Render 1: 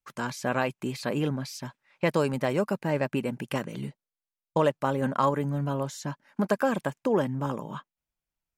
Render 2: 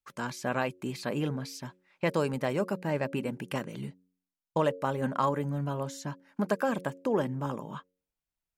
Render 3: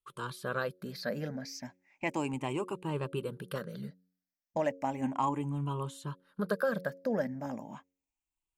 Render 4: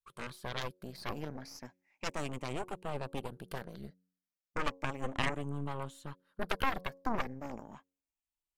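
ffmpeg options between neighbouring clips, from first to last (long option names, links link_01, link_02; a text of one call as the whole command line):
ffmpeg -i in.wav -af "bandreject=frequency=91.52:width_type=h:width=4,bandreject=frequency=183.04:width_type=h:width=4,bandreject=frequency=274.56:width_type=h:width=4,bandreject=frequency=366.08:width_type=h:width=4,bandreject=frequency=457.6:width_type=h:width=4,bandreject=frequency=549.12:width_type=h:width=4,volume=-3dB" out.wav
ffmpeg -i in.wav -af "afftfilt=real='re*pow(10,15/40*sin(2*PI*(0.65*log(max(b,1)*sr/1024/100)/log(2)-(0.34)*(pts-256)/sr)))':imag='im*pow(10,15/40*sin(2*PI*(0.65*log(max(b,1)*sr/1024/100)/log(2)-(0.34)*(pts-256)/sr)))':win_size=1024:overlap=0.75,volume=-6dB" out.wav
ffmpeg -i in.wav -af "aeval=exprs='0.133*(cos(1*acos(clip(val(0)/0.133,-1,1)))-cos(1*PI/2))+0.0531*(cos(3*acos(clip(val(0)/0.133,-1,1)))-cos(3*PI/2))+0.0376*(cos(4*acos(clip(val(0)/0.133,-1,1)))-cos(4*PI/2))+0.00422*(cos(7*acos(clip(val(0)/0.133,-1,1)))-cos(7*PI/2))':channel_layout=same,volume=1.5dB" out.wav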